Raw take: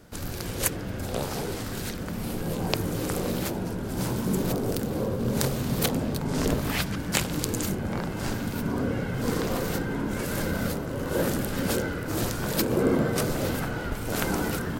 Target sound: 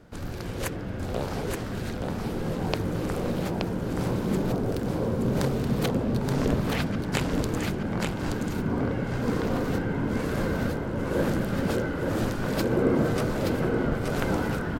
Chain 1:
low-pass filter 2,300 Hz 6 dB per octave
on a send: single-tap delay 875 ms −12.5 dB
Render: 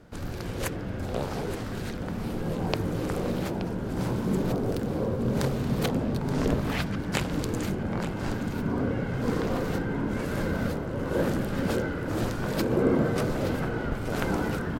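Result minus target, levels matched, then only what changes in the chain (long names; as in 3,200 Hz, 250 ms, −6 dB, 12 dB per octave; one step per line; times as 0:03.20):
echo-to-direct −8.5 dB
change: single-tap delay 875 ms −4 dB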